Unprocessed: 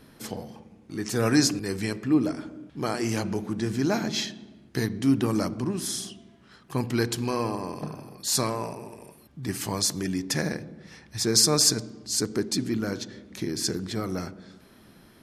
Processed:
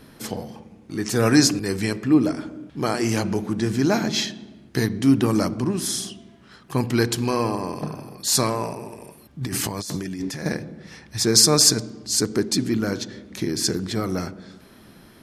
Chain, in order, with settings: 9.41–10.46 s: compressor with a negative ratio -34 dBFS, ratio -1; trim +5 dB

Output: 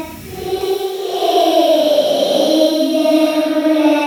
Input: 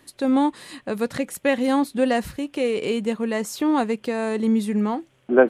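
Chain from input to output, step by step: Paulstretch 5×, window 0.25 s, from 2.23 s; feedback echo behind a high-pass 824 ms, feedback 42%, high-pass 1.5 kHz, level -8.5 dB; level rider gain up to 9 dB; speed mistake 33 rpm record played at 45 rpm; trim +2.5 dB

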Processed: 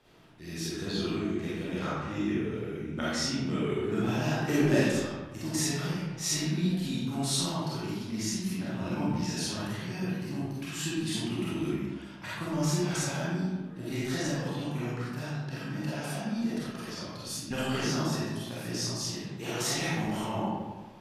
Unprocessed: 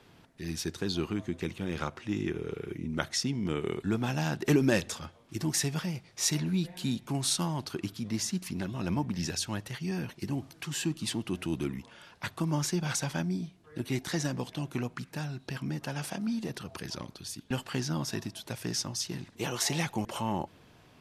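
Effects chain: 17.10–18.03 s: harmonic-percussive split percussive +5 dB; algorithmic reverb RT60 1.3 s, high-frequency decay 0.6×, pre-delay 5 ms, DRR -9.5 dB; trim -8 dB

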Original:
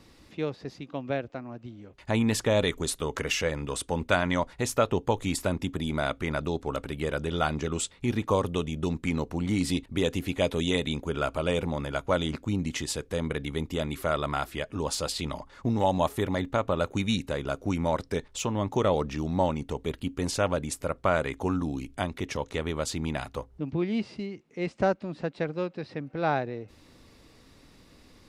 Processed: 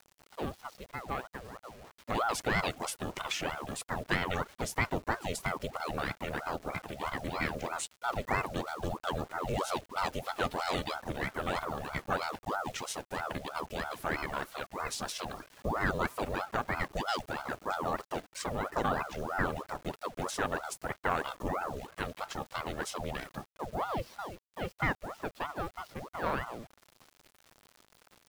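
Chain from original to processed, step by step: every band turned upside down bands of 500 Hz; word length cut 8-bit, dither none; ring modulator with a swept carrier 640 Hz, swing 75%, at 3.1 Hz; trim -3.5 dB

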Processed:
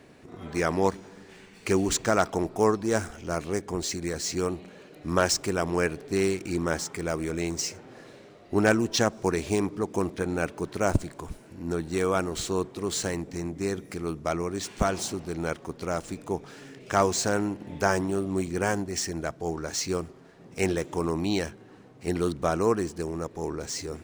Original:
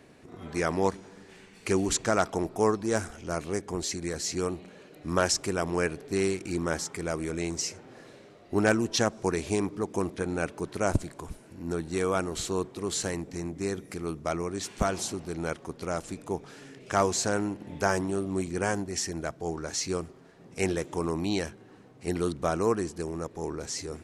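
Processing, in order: median filter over 3 samples; trim +2 dB

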